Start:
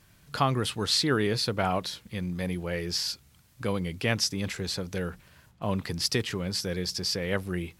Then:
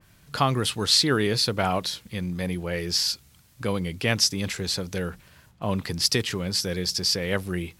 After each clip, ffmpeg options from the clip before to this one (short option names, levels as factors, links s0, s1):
-af "adynamicequalizer=threshold=0.0126:dfrequency=2800:dqfactor=0.7:tfrequency=2800:tqfactor=0.7:attack=5:release=100:ratio=0.375:range=2:mode=boostabove:tftype=highshelf,volume=1.33"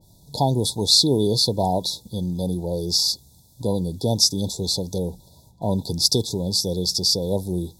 -af "afftfilt=real='re*(1-between(b*sr/4096,990,3400))':imag='im*(1-between(b*sr/4096,990,3400))':win_size=4096:overlap=0.75,volume=1.58"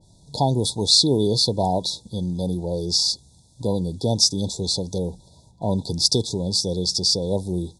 -af "aresample=22050,aresample=44100"